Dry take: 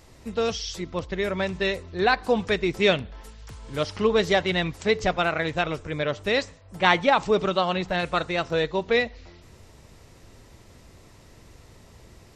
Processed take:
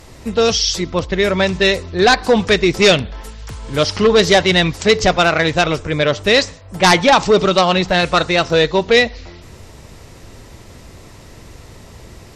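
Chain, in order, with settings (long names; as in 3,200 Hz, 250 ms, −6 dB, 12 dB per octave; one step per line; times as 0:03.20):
in parallel at −3 dB: sine wavefolder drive 11 dB, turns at −3 dBFS
on the sum: dynamic equaliser 5,100 Hz, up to +6 dB, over −33 dBFS, Q 1.2
level −2.5 dB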